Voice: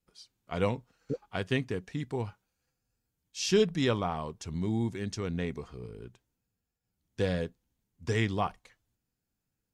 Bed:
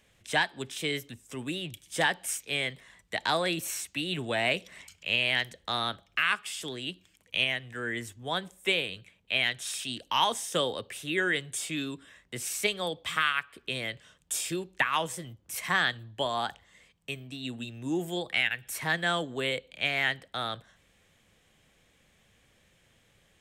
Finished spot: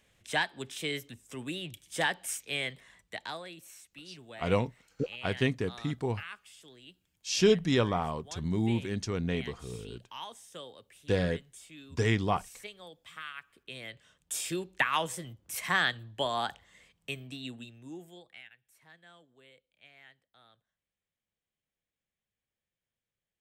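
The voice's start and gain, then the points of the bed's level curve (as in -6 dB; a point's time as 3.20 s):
3.90 s, +1.5 dB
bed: 2.98 s -3 dB
3.49 s -17 dB
13.15 s -17 dB
14.56 s -1 dB
17.31 s -1 dB
18.64 s -28.5 dB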